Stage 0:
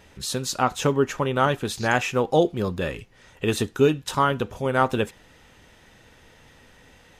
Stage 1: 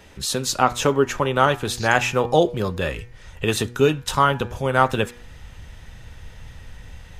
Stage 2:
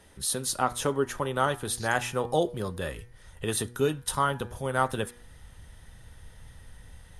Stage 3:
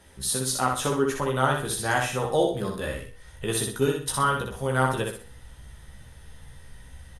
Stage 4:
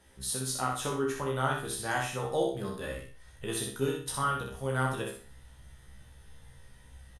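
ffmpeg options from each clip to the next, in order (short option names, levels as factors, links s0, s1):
-filter_complex "[0:a]bandreject=f=120.6:t=h:w=4,bandreject=f=241.2:t=h:w=4,bandreject=f=361.8:t=h:w=4,bandreject=f=482.4:t=h:w=4,bandreject=f=603:t=h:w=4,bandreject=f=723.6:t=h:w=4,bandreject=f=844.2:t=h:w=4,bandreject=f=964.8:t=h:w=4,bandreject=f=1085.4:t=h:w=4,bandreject=f=1206:t=h:w=4,bandreject=f=1326.6:t=h:w=4,bandreject=f=1447.2:t=h:w=4,bandreject=f=1567.8:t=h:w=4,bandreject=f=1688.4:t=h:w=4,bandreject=f=1809:t=h:w=4,bandreject=f=1929.6:t=h:w=4,bandreject=f=2050.2:t=h:w=4,bandreject=f=2170.8:t=h:w=4,bandreject=f=2291.4:t=h:w=4,bandreject=f=2412:t=h:w=4,asubboost=boost=7.5:cutoff=110,acrossover=split=210[s0][s1];[s0]acompressor=threshold=0.0178:ratio=6[s2];[s2][s1]amix=inputs=2:normalize=0,volume=1.68"
-af "superequalizer=12b=0.562:16b=3.98,volume=0.376"
-filter_complex "[0:a]asplit=2[s0][s1];[s1]adelay=15,volume=0.631[s2];[s0][s2]amix=inputs=2:normalize=0,asplit=2[s3][s4];[s4]aecho=0:1:62|124|186|248:0.631|0.208|0.0687|0.0227[s5];[s3][s5]amix=inputs=2:normalize=0"
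-filter_complex "[0:a]asplit=2[s0][s1];[s1]adelay=30,volume=0.501[s2];[s0][s2]amix=inputs=2:normalize=0,volume=0.422"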